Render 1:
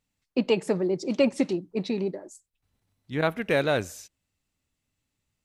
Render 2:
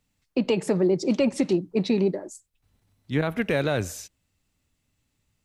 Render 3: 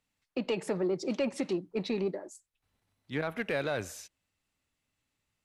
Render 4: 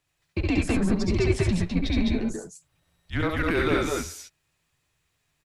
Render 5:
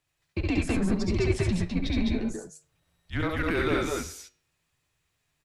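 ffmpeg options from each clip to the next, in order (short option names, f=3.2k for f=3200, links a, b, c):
-filter_complex "[0:a]lowshelf=f=210:g=3.5,acrossover=split=120[a][b];[b]alimiter=limit=-18.5dB:level=0:latency=1:release=114[c];[a][c]amix=inputs=2:normalize=0,volume=5dB"
-filter_complex "[0:a]equalizer=f=11k:t=o:w=0.63:g=5.5,asplit=2[a][b];[b]highpass=f=720:p=1,volume=10dB,asoftclip=type=tanh:threshold=-12dB[c];[a][c]amix=inputs=2:normalize=0,lowpass=f=3.2k:p=1,volume=-6dB,volume=-8dB"
-filter_complex "[0:a]asplit=2[a][b];[b]aecho=0:1:66|70|81|205|217:0.501|0.531|0.316|0.668|0.531[c];[a][c]amix=inputs=2:normalize=0,afreqshift=-170,volume=5.5dB"
-af "flanger=delay=8.6:depth=1.6:regen=-89:speed=0.53:shape=triangular,volume=2dB"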